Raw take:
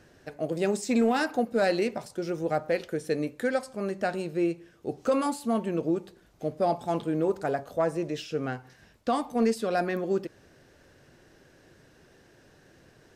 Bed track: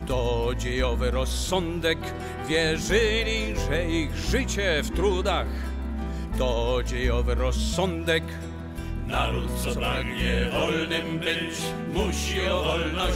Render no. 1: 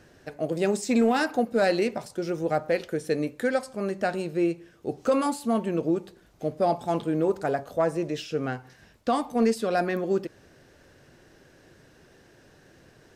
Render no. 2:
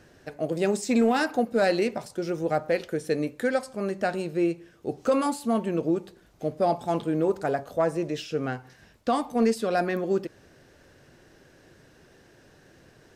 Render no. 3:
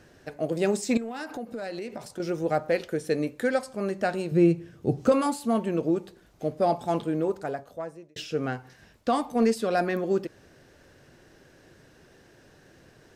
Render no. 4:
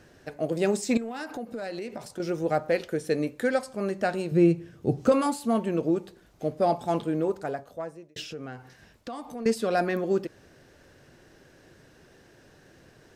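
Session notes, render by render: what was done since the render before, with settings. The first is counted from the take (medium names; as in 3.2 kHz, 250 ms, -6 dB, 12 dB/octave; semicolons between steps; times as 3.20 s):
trim +2 dB
no audible change
0.97–2.20 s: compression 10:1, threshold -31 dBFS; 4.31–5.12 s: peaking EQ 130 Hz +14 dB 1.9 oct; 6.94–8.16 s: fade out
8.25–9.46 s: compression 3:1, threshold -37 dBFS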